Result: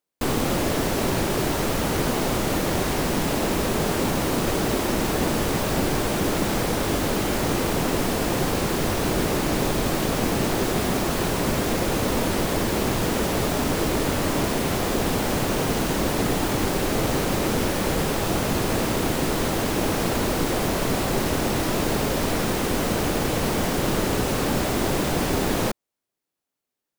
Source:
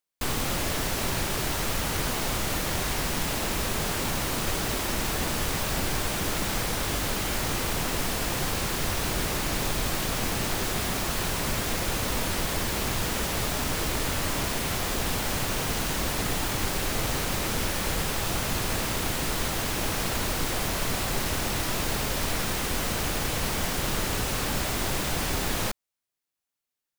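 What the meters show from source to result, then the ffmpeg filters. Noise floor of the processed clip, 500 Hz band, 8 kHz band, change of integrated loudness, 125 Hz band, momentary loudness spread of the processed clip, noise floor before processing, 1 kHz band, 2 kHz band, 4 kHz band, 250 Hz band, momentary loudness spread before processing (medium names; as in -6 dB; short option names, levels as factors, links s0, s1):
-85 dBFS, +9.0 dB, 0.0 dB, +4.0 dB, +5.0 dB, 1 LU, under -85 dBFS, +5.0 dB, +2.0 dB, +0.5 dB, +9.5 dB, 0 LU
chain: -af "equalizer=f=330:t=o:w=2.9:g=10.5"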